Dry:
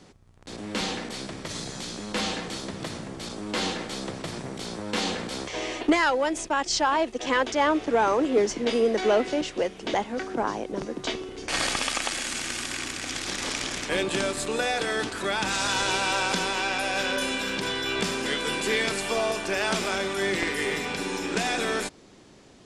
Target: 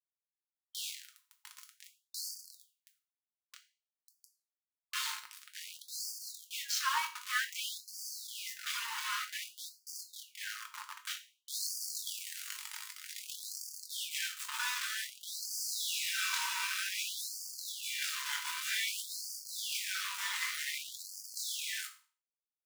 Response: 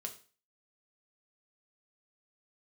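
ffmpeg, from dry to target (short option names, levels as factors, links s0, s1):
-filter_complex "[0:a]asettb=1/sr,asplit=3[s0][s1][s2];[s0]atrim=end=2.644[s3];[s1]atrim=start=2.64:end=4.81,asetpts=PTS-STARTPTS,afade=t=in:d=0.004:c=qsin,afade=t=out:st=2.166:d=0.004:c=qsin,acompressor=threshold=0.0224:ratio=12[s4];[s2]atrim=start=4.806[s5];[s3][s4]acrossfade=d=0.004:c1=hsin:c2=qsin[s6];[s6][s5]acrossfade=d=0.004:c1=qsin:c2=hsin,flanger=delay=20:depth=2.8:speed=0.16,aeval=exprs='val(0)*gte(abs(val(0)),0.0422)':c=same[s7];[1:a]atrim=start_sample=2205[s8];[s7][s8]afir=irnorm=-1:irlink=0,afftfilt=real='re*gte(b*sr/1024,830*pow(4500/830,0.5+0.5*sin(2*PI*0.53*pts/sr)))':imag='im*gte(b*sr/1024,830*pow(4500/830,0.5+0.5*sin(2*PI*0.53*pts/sr)))':win_size=1024:overlap=0.75"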